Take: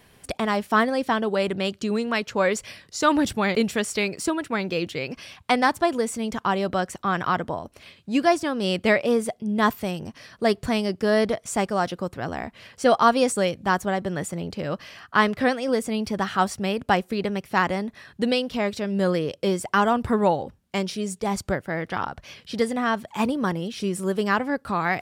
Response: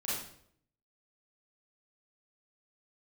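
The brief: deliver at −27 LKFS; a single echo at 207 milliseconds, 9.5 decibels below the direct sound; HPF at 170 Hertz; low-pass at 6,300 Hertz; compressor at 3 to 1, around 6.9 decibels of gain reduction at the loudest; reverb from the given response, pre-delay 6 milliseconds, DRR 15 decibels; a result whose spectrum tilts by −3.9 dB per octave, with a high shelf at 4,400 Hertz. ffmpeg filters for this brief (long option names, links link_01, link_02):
-filter_complex "[0:a]highpass=170,lowpass=6300,highshelf=frequency=4400:gain=-4.5,acompressor=threshold=-23dB:ratio=3,aecho=1:1:207:0.335,asplit=2[link_01][link_02];[1:a]atrim=start_sample=2205,adelay=6[link_03];[link_02][link_03]afir=irnorm=-1:irlink=0,volume=-19dB[link_04];[link_01][link_04]amix=inputs=2:normalize=0,volume=1dB"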